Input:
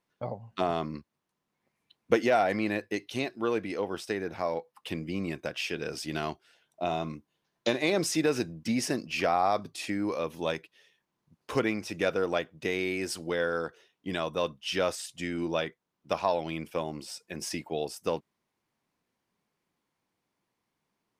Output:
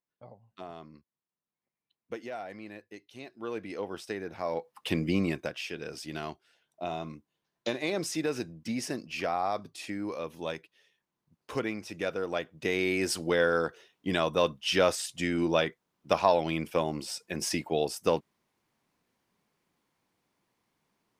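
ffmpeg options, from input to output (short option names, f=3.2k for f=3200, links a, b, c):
-af "volume=15.5dB,afade=t=in:st=3.17:d=0.62:silence=0.281838,afade=t=in:st=4.4:d=0.68:silence=0.281838,afade=t=out:st=5.08:d=0.51:silence=0.266073,afade=t=in:st=12.27:d=0.8:silence=0.375837"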